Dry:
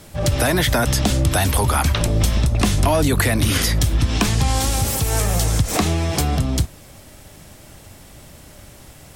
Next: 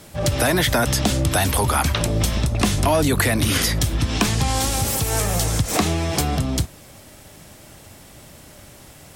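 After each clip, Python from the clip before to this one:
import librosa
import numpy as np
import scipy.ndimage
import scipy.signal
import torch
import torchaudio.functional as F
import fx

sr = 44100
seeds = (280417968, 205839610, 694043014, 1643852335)

y = fx.low_shelf(x, sr, hz=68.0, db=-8.5)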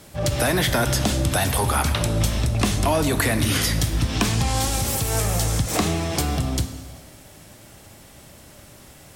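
y = fx.rev_plate(x, sr, seeds[0], rt60_s=1.6, hf_ratio=0.9, predelay_ms=0, drr_db=8.5)
y = y * 10.0 ** (-2.5 / 20.0)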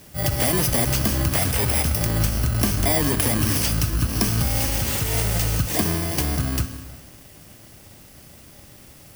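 y = fx.bit_reversed(x, sr, seeds[1], block=32)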